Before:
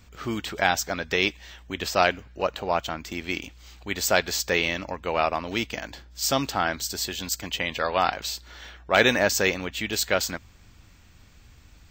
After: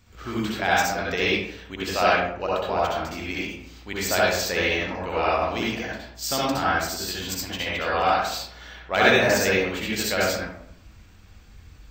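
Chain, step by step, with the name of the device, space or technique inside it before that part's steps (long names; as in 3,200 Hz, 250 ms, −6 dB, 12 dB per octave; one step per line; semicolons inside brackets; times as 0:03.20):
bathroom (convolution reverb RT60 0.70 s, pre-delay 59 ms, DRR −6.5 dB)
level −5 dB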